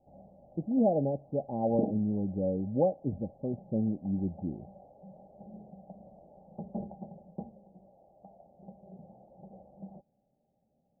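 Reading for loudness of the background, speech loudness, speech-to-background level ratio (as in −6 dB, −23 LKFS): −44.5 LKFS, −31.5 LKFS, 13.0 dB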